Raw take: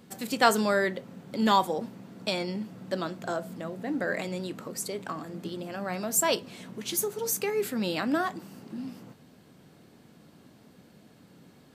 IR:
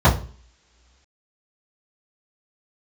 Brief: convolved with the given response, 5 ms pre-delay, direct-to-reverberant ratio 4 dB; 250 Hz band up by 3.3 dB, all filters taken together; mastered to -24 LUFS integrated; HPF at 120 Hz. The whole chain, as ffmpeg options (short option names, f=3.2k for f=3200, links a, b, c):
-filter_complex "[0:a]highpass=120,equalizer=f=250:t=o:g=4.5,asplit=2[a][b];[1:a]atrim=start_sample=2205,adelay=5[c];[b][c]afir=irnorm=-1:irlink=0,volume=-27dB[d];[a][d]amix=inputs=2:normalize=0,volume=2.5dB"